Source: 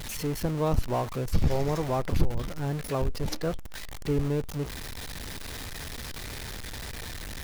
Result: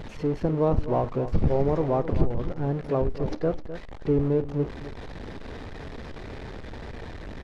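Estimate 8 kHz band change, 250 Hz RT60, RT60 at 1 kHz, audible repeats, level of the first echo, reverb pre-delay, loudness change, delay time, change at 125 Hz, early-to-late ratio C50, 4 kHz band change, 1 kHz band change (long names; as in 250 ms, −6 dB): below −15 dB, no reverb audible, no reverb audible, 2, −20.0 dB, no reverb audible, +5.0 dB, 50 ms, +2.0 dB, no reverb audible, −10.5 dB, +2.0 dB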